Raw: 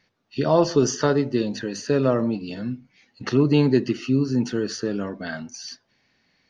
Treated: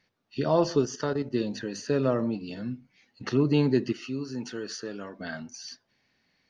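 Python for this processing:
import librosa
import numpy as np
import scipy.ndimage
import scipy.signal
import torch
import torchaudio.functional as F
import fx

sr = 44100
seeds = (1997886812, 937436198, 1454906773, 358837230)

y = fx.level_steps(x, sr, step_db=11, at=(0.81, 1.32), fade=0.02)
y = fx.low_shelf(y, sr, hz=380.0, db=-11.0, at=(3.92, 5.19))
y = F.gain(torch.from_numpy(y), -5.0).numpy()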